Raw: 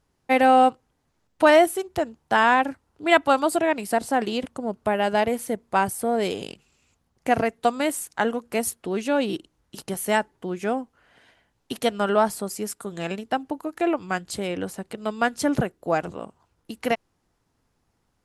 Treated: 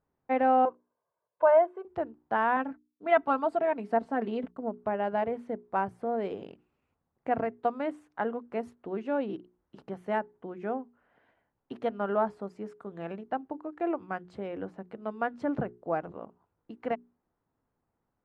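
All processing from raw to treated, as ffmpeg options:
ffmpeg -i in.wav -filter_complex "[0:a]asettb=1/sr,asplit=3[link_01][link_02][link_03];[link_01]atrim=end=0.654[link_04];[link_02]atrim=start=0.65:end=1.85,asetpts=PTS-STARTPTS,afade=type=in:duration=0.004:curve=qsin,afade=type=out:start_time=1.196:duration=0.004:curve=qsin,bandpass=frequency=830:width_type=q:width=1.3,aecho=1:1:1.9:0.97,atrim=end_sample=52920[link_05];[link_03]atrim=start=1.846[link_06];[link_04][link_05]acrossfade=duration=0.004:curve1=hsin:curve2=qsin[link_07];[link_07][link_06]acrossfade=duration=0.004:curve1=qsin:curve2=hsin,asettb=1/sr,asplit=3[link_08][link_09][link_10];[link_08]atrim=end=2.564[link_11];[link_09]atrim=start=2.56:end=4.69,asetpts=PTS-STARTPTS,afade=type=in:duration=0.004:curve=qsin,afade=type=out:start_time=2.126:duration=0.004:curve=qsin,aecho=1:1:4.5:0.57,atrim=end_sample=93933,agate=range=-33dB:threshold=-39dB:ratio=3:release=100:detection=peak[link_12];[link_10]atrim=start=4.686[link_13];[link_11][link_12]acrossfade=duration=0.004:curve1=hsin:curve2=qsin[link_14];[link_14][link_13]acrossfade=duration=0.004:curve1=qsin:curve2=hsin,lowpass=1400,lowshelf=frequency=91:gain=-8.5,bandreject=frequency=60:width_type=h:width=6,bandreject=frequency=120:width_type=h:width=6,bandreject=frequency=180:width_type=h:width=6,bandreject=frequency=240:width_type=h:width=6,bandreject=frequency=300:width_type=h:width=6,bandreject=frequency=360:width_type=h:width=6,bandreject=frequency=420:width_type=h:width=6,volume=-6.5dB" out.wav

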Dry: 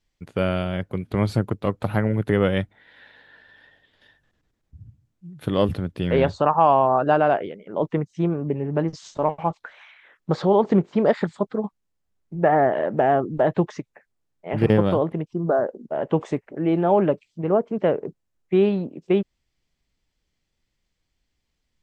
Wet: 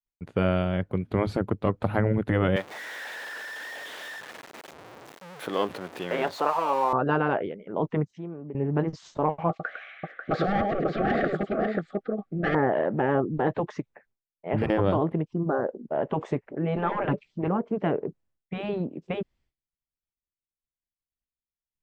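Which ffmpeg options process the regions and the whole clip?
ffmpeg -i in.wav -filter_complex "[0:a]asettb=1/sr,asplit=3[link_01][link_02][link_03];[link_01]atrim=end=2.564[link_04];[link_02]atrim=start=2.56:end=6.93,asetpts=PTS-STARTPTS,afade=type=in:duration=0.004:curve=qsin,afade=type=out:start_time=4.366:duration=0.004:curve=qsin,aeval=exprs='val(0)+0.5*0.0316*sgn(val(0))':channel_layout=same,highpass=470[link_05];[link_03]atrim=start=6.926[link_06];[link_04][link_05]acrossfade=duration=0.004:curve1=hsin:curve2=qsin[link_07];[link_07][link_06]acrossfade=duration=0.004:curve1=qsin:curve2=hsin,asettb=1/sr,asplit=3[link_08][link_09][link_10];[link_08]atrim=end=8.114[link_11];[link_09]atrim=start=8.11:end=8.55,asetpts=PTS-STARTPTS,afade=type=in:duration=0.004:curve=qsin,afade=type=out:start_time=0.436:duration=0.004:curve=qsin,acompressor=threshold=-43dB:ratio=2:attack=3.2:release=140:knee=1:detection=peak,highpass=150,lowpass=6000[link_12];[link_10]atrim=start=8.546[link_13];[link_11][link_12]acrossfade=duration=0.004:curve1=hsin:curve2=qsin[link_14];[link_14][link_13]acrossfade=duration=0.004:curve1=qsin:curve2=hsin,asettb=1/sr,asplit=3[link_15][link_16][link_17];[link_15]atrim=end=9.494[link_18];[link_16]atrim=start=9.49:end=12.55,asetpts=PTS-STARTPTS,afade=type=in:duration=0.004:curve=qsin,afade=type=out:start_time=3.056:duration=0.004:curve=qsin,aecho=1:1:104|542:0.398|0.447,atrim=end_sample=134946,asplit=2[link_19][link_20];[link_20]highpass=frequency=720:poles=1,volume=18dB,asoftclip=type=tanh:threshold=-5dB[link_21];[link_19][link_21]amix=inputs=2:normalize=0,lowpass=frequency=1200:poles=1,volume=-6dB,asuperstop=centerf=950:order=12:qfactor=3[link_22];[link_17]atrim=start=12.546[link_23];[link_18][link_22]acrossfade=duration=0.004:curve1=hsin:curve2=qsin[link_24];[link_24][link_23]acrossfade=duration=0.004:curve1=qsin:curve2=hsin,asettb=1/sr,asplit=3[link_25][link_26][link_27];[link_25]atrim=end=16.764[link_28];[link_26]atrim=start=16.76:end=17.48,asetpts=PTS-STARTPTS,afade=type=in:duration=0.004:curve=qsin,afade=type=out:start_time=0.716:duration=0.004:curve=qsin,lowpass=5800,acontrast=38,aecho=1:1:5.1:0.32,atrim=end_sample=31752[link_29];[link_27]atrim=start=17.476[link_30];[link_28][link_29]acrossfade=duration=0.004:curve1=hsin:curve2=qsin[link_31];[link_31][link_30]acrossfade=duration=0.004:curve1=qsin:curve2=hsin,afftfilt=real='re*lt(hypot(re,im),0.708)':imag='im*lt(hypot(re,im),0.708)':win_size=1024:overlap=0.75,agate=range=-33dB:threshold=-58dB:ratio=3:detection=peak,highshelf=frequency=3800:gain=-11.5" out.wav

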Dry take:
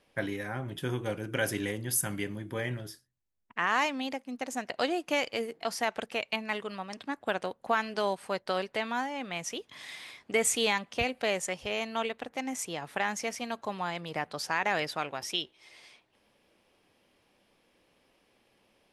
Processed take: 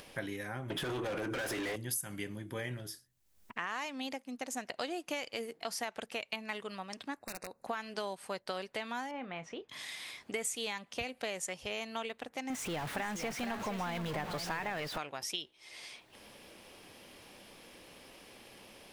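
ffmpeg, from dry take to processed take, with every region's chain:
ffmpeg -i in.wav -filter_complex "[0:a]asettb=1/sr,asplit=3[link_01][link_02][link_03];[link_01]atrim=end=0.704[link_04];[link_02]atrim=start=0.7:end=1.76,asetpts=PTS-STARTPTS,afade=type=in:duration=0.004:curve=qsin,afade=type=out:start_time=1.056:duration=0.004:curve=qsin,asplit=2[link_05][link_06];[link_06]highpass=frequency=720:poles=1,volume=31dB,asoftclip=type=tanh:threshold=-16dB[link_07];[link_05][link_07]amix=inputs=2:normalize=0,lowpass=frequency=1400:poles=1,volume=-6dB,acompressor=threshold=-28dB:ratio=6:attack=3.2:release=140:knee=1:detection=peak[link_08];[link_03]atrim=start=1.756[link_09];[link_04][link_08]acrossfade=duration=0.004:curve1=hsin:curve2=qsin[link_10];[link_10][link_09]acrossfade=duration=0.004:curve1=qsin:curve2=hsin,asettb=1/sr,asplit=3[link_11][link_12][link_13];[link_11]atrim=end=7.194[link_14];[link_12]atrim=start=7.19:end=7.65,asetpts=PTS-STARTPTS,afade=type=in:duration=0.004:curve=qsin,afade=type=out:start_time=0.456:duration=0.004:curve=qsin,aeval=exprs='(mod(13.3*val(0)+1,2)-1)/13.3':channel_layout=same,acompressor=threshold=-39dB:ratio=3:attack=3.2:release=140:knee=1:detection=peak,asuperstop=centerf=3200:order=12:qfactor=3.5[link_15];[link_13]atrim=start=7.646[link_16];[link_14][link_15]acrossfade=duration=0.004:curve1=hsin:curve2=qsin[link_17];[link_17][link_16]acrossfade=duration=0.004:curve1=qsin:curve2=hsin,asettb=1/sr,asplit=3[link_18][link_19][link_20];[link_18]atrim=end=9.114[link_21];[link_19]atrim=start=9.11:end=9.69,asetpts=PTS-STARTPTS,afade=type=in:duration=0.004:curve=qsin,afade=type=out:start_time=0.576:duration=0.004:curve=qsin,lowpass=1900,asplit=2[link_22][link_23];[link_23]adelay=31,volume=-12dB[link_24];[link_22][link_24]amix=inputs=2:normalize=0,atrim=end_sample=25578[link_25];[link_20]atrim=start=9.686[link_26];[link_21][link_25]acrossfade=duration=0.004:curve1=hsin:curve2=qsin[link_27];[link_27][link_26]acrossfade=duration=0.004:curve1=qsin:curve2=hsin,asettb=1/sr,asplit=3[link_28][link_29][link_30];[link_28]atrim=end=12.504[link_31];[link_29]atrim=start=12.5:end=14.98,asetpts=PTS-STARTPTS,afade=type=in:duration=0.004:curve=qsin,afade=type=out:start_time=2.476:duration=0.004:curve=qsin,aeval=exprs='val(0)+0.5*0.0299*sgn(val(0))':channel_layout=same,bass=frequency=250:gain=3,treble=frequency=4000:gain=-12,aecho=1:1:467:0.335,atrim=end_sample=109368[link_32];[link_30]atrim=start=14.976[link_33];[link_31][link_32]acrossfade=duration=0.004:curve1=hsin:curve2=qsin[link_34];[link_34][link_33]acrossfade=duration=0.004:curve1=qsin:curve2=hsin,acompressor=mode=upward:threshold=-36dB:ratio=2.5,highshelf=frequency=4100:gain=6.5,acompressor=threshold=-29dB:ratio=6,volume=-4.5dB" out.wav

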